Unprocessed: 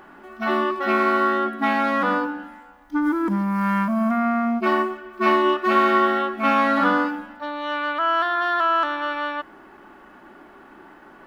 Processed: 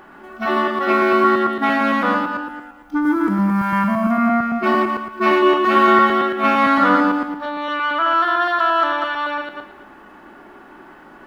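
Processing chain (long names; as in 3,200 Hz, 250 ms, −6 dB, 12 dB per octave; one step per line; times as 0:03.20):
feedback delay that plays each chunk backwards 113 ms, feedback 41%, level −4.5 dB
level +2.5 dB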